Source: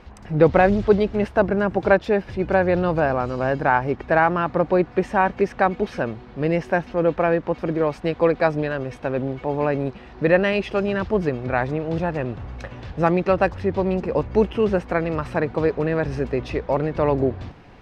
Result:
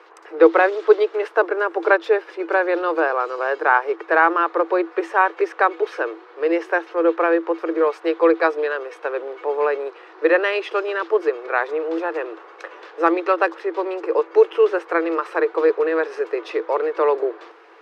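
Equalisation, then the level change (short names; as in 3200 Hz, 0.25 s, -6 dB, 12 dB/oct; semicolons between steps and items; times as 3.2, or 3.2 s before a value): dynamic EQ 3600 Hz, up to +4 dB, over -46 dBFS, Q 3.4; rippled Chebyshev high-pass 320 Hz, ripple 9 dB; +7.0 dB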